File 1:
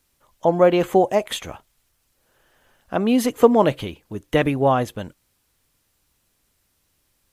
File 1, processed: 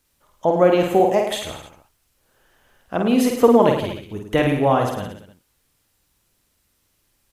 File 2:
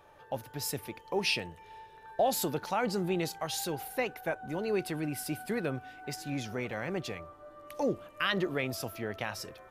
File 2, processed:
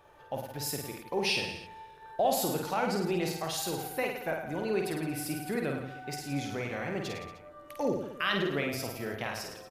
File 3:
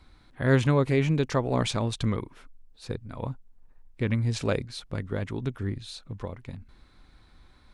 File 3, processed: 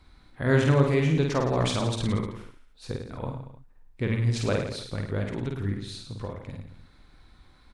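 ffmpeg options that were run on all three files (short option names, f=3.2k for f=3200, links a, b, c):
-af "aecho=1:1:50|105|165.5|232|305.3:0.631|0.398|0.251|0.158|0.1,volume=-1dB"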